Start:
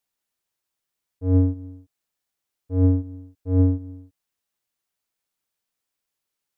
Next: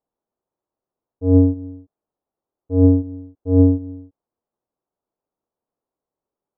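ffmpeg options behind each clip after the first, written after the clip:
-af "lowpass=f=1100:w=0.5412,lowpass=f=1100:w=1.3066,equalizer=f=420:w=0.6:g=8,volume=1.19"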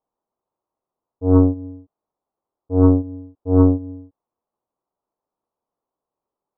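-af "aeval=exprs='0.794*(cos(1*acos(clip(val(0)/0.794,-1,1)))-cos(1*PI/2))+0.0708*(cos(4*acos(clip(val(0)/0.794,-1,1)))-cos(4*PI/2))':c=same,lowpass=f=1100:t=q:w=2.1,volume=0.891"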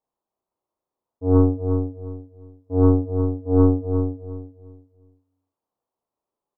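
-filter_complex "[0:a]asplit=2[s0][s1];[s1]adelay=35,volume=0.708[s2];[s0][s2]amix=inputs=2:normalize=0,asplit=2[s3][s4];[s4]adelay=355,lowpass=f=1200:p=1,volume=0.501,asplit=2[s5][s6];[s6]adelay=355,lowpass=f=1200:p=1,volume=0.28,asplit=2[s7][s8];[s8]adelay=355,lowpass=f=1200:p=1,volume=0.28,asplit=2[s9][s10];[s10]adelay=355,lowpass=f=1200:p=1,volume=0.28[s11];[s5][s7][s9][s11]amix=inputs=4:normalize=0[s12];[s3][s12]amix=inputs=2:normalize=0,volume=0.631"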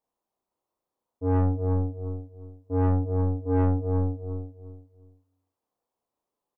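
-filter_complex "[0:a]asplit=2[s0][s1];[s1]adelay=31,volume=0.299[s2];[s0][s2]amix=inputs=2:normalize=0,asoftclip=type=tanh:threshold=0.126"

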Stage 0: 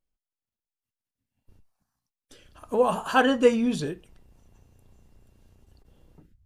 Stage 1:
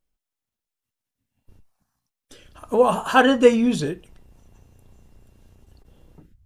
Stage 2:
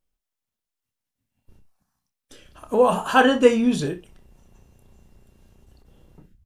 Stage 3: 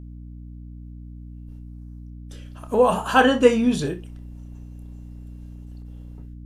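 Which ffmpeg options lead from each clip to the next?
-af "bandreject=f=4600:w=28,volume=1.78"
-af "aecho=1:1:28|62:0.316|0.141,volume=0.891"
-af "aeval=exprs='val(0)+0.0141*(sin(2*PI*60*n/s)+sin(2*PI*2*60*n/s)/2+sin(2*PI*3*60*n/s)/3+sin(2*PI*4*60*n/s)/4+sin(2*PI*5*60*n/s)/5)':c=same"

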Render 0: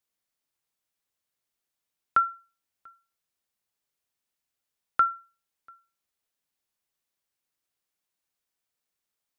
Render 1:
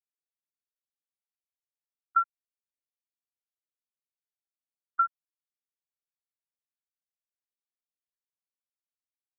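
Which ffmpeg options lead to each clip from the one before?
-af "afftfilt=real='re*gte(hypot(re,im),0.501)':imag='im*gte(hypot(re,im),0.501)':win_size=1024:overlap=0.75,asubboost=boost=11:cutoff=250"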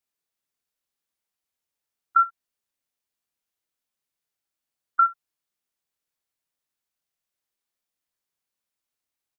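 -filter_complex "[0:a]acompressor=threshold=0.0501:ratio=2.5,asplit=2[s0][s1];[s1]aecho=0:1:28|66:0.398|0.141[s2];[s0][s2]amix=inputs=2:normalize=0,volume=2.66"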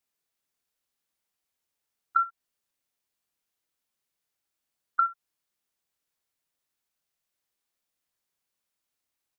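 -af "acompressor=threshold=0.0631:ratio=5,volume=1.26"

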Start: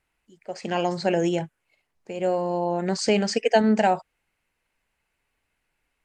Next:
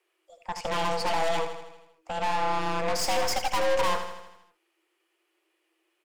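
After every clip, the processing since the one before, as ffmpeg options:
-filter_complex "[0:a]afreqshift=320,aeval=exprs='(tanh(31.6*val(0)+0.75)-tanh(0.75))/31.6':c=same,asplit=2[s0][s1];[s1]aecho=0:1:80|160|240|320|400|480|560:0.355|0.206|0.119|0.0692|0.0402|0.0233|0.0135[s2];[s0][s2]amix=inputs=2:normalize=0,volume=1.78"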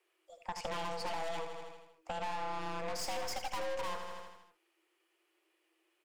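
-af "acompressor=threshold=0.0224:ratio=4,volume=0.75"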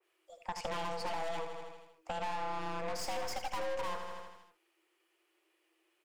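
-af "adynamicequalizer=threshold=0.00178:dfrequency=2400:dqfactor=0.7:tfrequency=2400:tqfactor=0.7:attack=5:release=100:ratio=0.375:range=1.5:mode=cutabove:tftype=highshelf,volume=1.12"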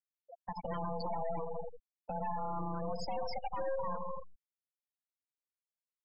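-af "equalizer=f=170:t=o:w=0.82:g=8,afftfilt=real='re*gte(hypot(re,im),0.0251)':imag='im*gte(hypot(re,im),0.0251)':win_size=1024:overlap=0.75,alimiter=level_in=3.35:limit=0.0631:level=0:latency=1:release=175,volume=0.299,volume=2.11"

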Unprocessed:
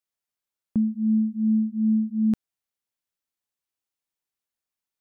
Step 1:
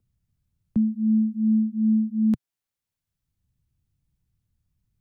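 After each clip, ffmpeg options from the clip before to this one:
-filter_complex "[0:a]equalizer=f=130:w=1.7:g=4,acrossover=split=140|210[s0][s1][s2];[s0]acompressor=mode=upward:threshold=0.00631:ratio=2.5[s3];[s3][s1][s2]amix=inputs=3:normalize=0"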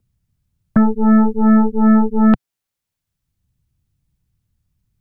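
-af "acontrast=63,aeval=exprs='0.398*(cos(1*acos(clip(val(0)/0.398,-1,1)))-cos(1*PI/2))+0.0631*(cos(3*acos(clip(val(0)/0.398,-1,1)))-cos(3*PI/2))+0.0631*(cos(8*acos(clip(val(0)/0.398,-1,1)))-cos(8*PI/2))':c=same,volume=1.68"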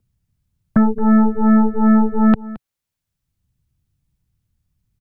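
-af "aecho=1:1:220:0.126,volume=0.891"

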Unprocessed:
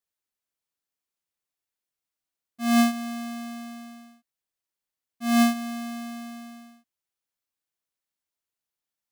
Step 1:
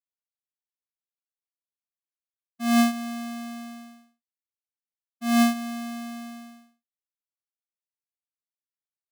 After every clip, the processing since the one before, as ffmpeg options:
-af "agate=range=0.0224:threshold=0.01:ratio=3:detection=peak"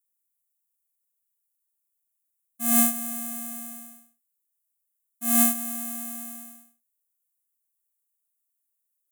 -af "aexciter=amount=8.6:drive=8.1:freq=7000,volume=0.531"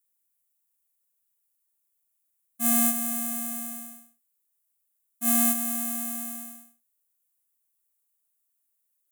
-af "alimiter=limit=0.376:level=0:latency=1,volume=1.41"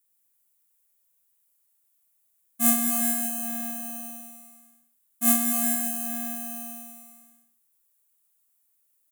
-af "aecho=1:1:100|225|381.2|576.6|820.7:0.631|0.398|0.251|0.158|0.1,volume=1.58"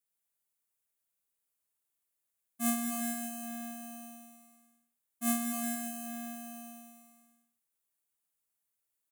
-af "highshelf=f=8400:g=-10.5,volume=0.501"

